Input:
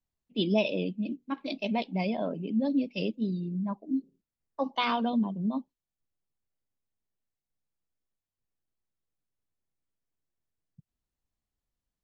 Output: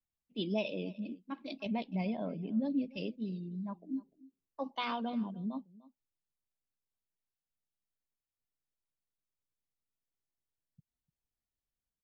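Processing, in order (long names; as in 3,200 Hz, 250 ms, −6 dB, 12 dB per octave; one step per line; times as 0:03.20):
0:01.66–0:02.97: bass and treble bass +6 dB, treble −5 dB
single-tap delay 298 ms −20.5 dB
level −8 dB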